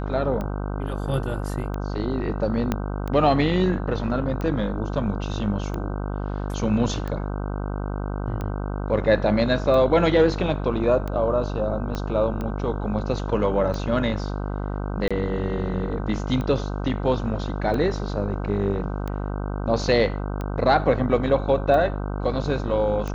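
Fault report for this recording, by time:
buzz 50 Hz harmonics 31 -28 dBFS
tick 45 rpm -18 dBFS
2.72 pop -10 dBFS
11.95 pop -15 dBFS
15.08–15.11 gap 26 ms

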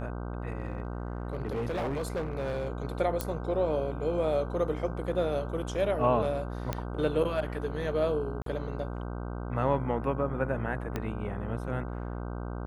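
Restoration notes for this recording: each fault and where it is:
buzz 60 Hz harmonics 26 -36 dBFS
0.58–2.68 clipped -28 dBFS
3.21 pop -14 dBFS
6.73 pop -16 dBFS
8.42–8.46 gap 43 ms
10.96 pop -18 dBFS

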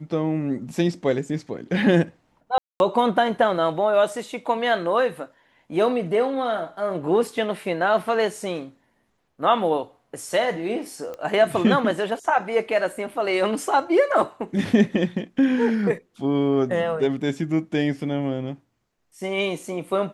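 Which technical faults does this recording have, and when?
2.58–2.8 gap 0.221 s
11.14 pop -22 dBFS

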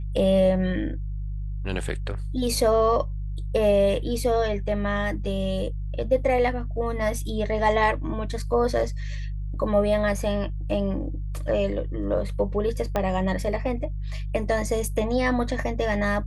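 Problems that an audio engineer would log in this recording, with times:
hum 50 Hz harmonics 3 -30 dBFS
12.96 pop -12 dBFS

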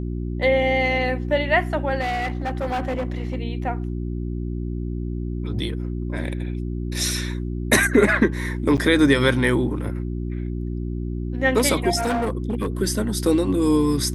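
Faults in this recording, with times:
hum 60 Hz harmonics 6 -27 dBFS
2–3.35 clipped -21 dBFS
8.77–8.78 gap 7.9 ms
11.97–12.68 clipped -19 dBFS

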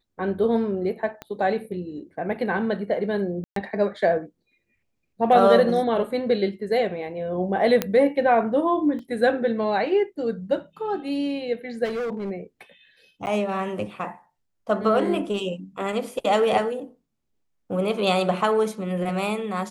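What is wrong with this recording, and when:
1.22 pop -20 dBFS
3.44–3.56 gap 0.123 s
7.82 pop -7 dBFS
8.99 gap 2 ms
11.84–12.31 clipped -25 dBFS
13.26–13.27 gap 9.5 ms

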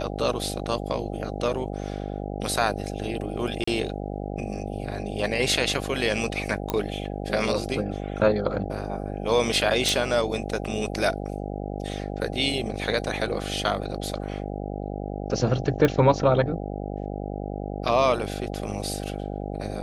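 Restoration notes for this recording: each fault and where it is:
buzz 50 Hz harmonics 16 -32 dBFS
3.64–3.67 gap 34 ms
6.7 pop -11 dBFS
9.89 pop
15.85 pop -9 dBFS

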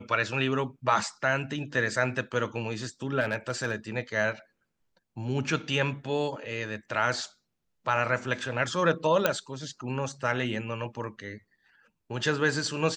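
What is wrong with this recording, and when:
3.2–3.75 clipped -21.5 dBFS
9.26 pop -8 dBFS

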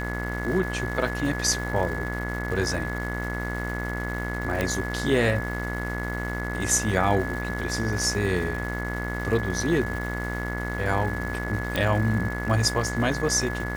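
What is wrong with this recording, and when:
buzz 60 Hz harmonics 37 -31 dBFS
crackle 560/s -35 dBFS
tone 1700 Hz -33 dBFS
4.61 pop -11 dBFS
11.76 pop -11 dBFS

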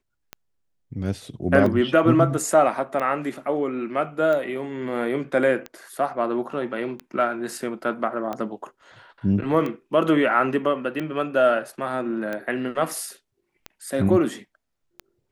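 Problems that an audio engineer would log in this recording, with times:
tick 45 rpm -17 dBFS

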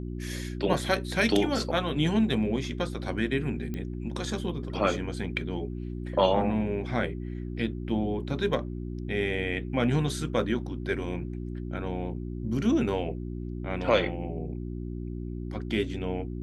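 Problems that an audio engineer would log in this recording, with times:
hum 60 Hz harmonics 6 -35 dBFS
3.74 pop -22 dBFS

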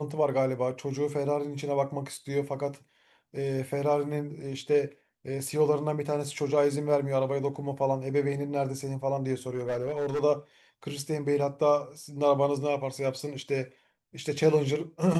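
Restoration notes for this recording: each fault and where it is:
9.5–10.23 clipped -25.5 dBFS

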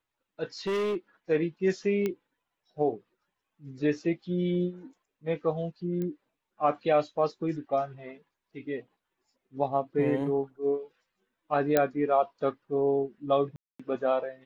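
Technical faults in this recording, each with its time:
0.67–0.97 clipped -26 dBFS
2.06 pop -17 dBFS
6.02 pop -23 dBFS
11.77 pop -9 dBFS
13.56–13.79 gap 0.235 s

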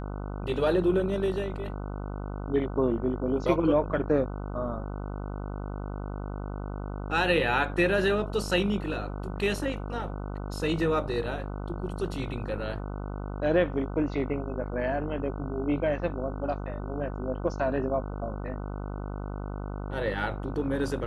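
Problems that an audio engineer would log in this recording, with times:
buzz 50 Hz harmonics 30 -35 dBFS

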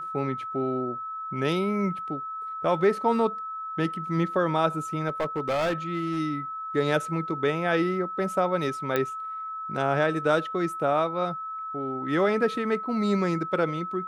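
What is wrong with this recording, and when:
tone 1300 Hz -32 dBFS
5.08–6.2 clipped -22.5 dBFS
8.96 pop -12 dBFS

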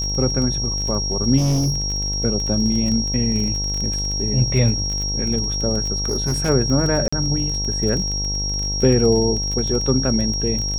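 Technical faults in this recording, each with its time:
buzz 50 Hz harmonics 20 -26 dBFS
crackle 24/s -24 dBFS
tone 5600 Hz -23 dBFS
1.37–1.82 clipped -15.5 dBFS
6.05–6.5 clipped -16 dBFS
7.08–7.12 gap 45 ms

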